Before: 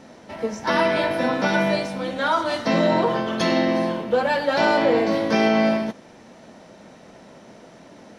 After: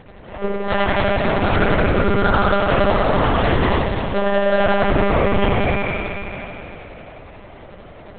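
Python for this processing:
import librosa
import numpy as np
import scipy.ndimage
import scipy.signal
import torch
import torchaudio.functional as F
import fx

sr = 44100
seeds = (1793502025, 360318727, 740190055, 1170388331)

p1 = scipy.signal.sosfilt(scipy.signal.butter(2, 53.0, 'highpass', fs=sr, output='sos'), x)
p2 = fx.rider(p1, sr, range_db=10, speed_s=2.0)
p3 = p1 + (p2 * 10.0 ** (2.5 / 20.0))
p4 = fx.small_body(p3, sr, hz=(290.0, 1300.0), ring_ms=30, db=16, at=(1.57, 2.21))
p5 = p4 * (1.0 - 0.79 / 2.0 + 0.79 / 2.0 * np.cos(2.0 * np.pi * 11.0 * (np.arange(len(p4)) / sr)))
p6 = 10.0 ** (-11.5 / 20.0) * np.tanh(p5 / 10.0 ** (-11.5 / 20.0))
p7 = fx.echo_feedback(p6, sr, ms=484, feedback_pct=50, wet_db=-22.5)
p8 = fx.rev_spring(p7, sr, rt60_s=3.5, pass_ms=(54,), chirp_ms=50, drr_db=-4.5)
p9 = fx.lpc_monotone(p8, sr, seeds[0], pitch_hz=200.0, order=10)
p10 = fx.env_flatten(p9, sr, amount_pct=70, at=(3.13, 3.79))
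y = p10 * 10.0 ** (-2.0 / 20.0)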